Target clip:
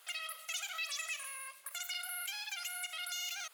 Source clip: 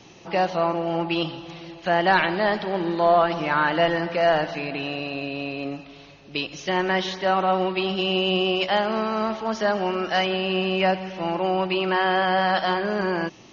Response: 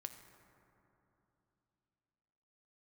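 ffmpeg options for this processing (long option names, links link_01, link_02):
-af "highpass=frequency=1300:poles=1,highshelf=frequency=2100:gain=-7,acompressor=threshold=-39dB:ratio=2,asetrate=168462,aresample=44100,volume=-3.5dB"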